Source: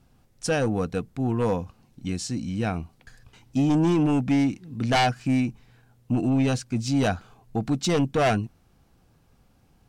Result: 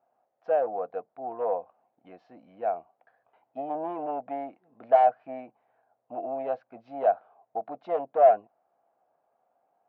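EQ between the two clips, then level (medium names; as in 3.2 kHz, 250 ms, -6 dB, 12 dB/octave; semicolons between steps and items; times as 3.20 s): dynamic bell 520 Hz, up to +5 dB, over -36 dBFS, Q 2.1; ladder band-pass 730 Hz, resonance 70%; distance through air 290 m; +6.0 dB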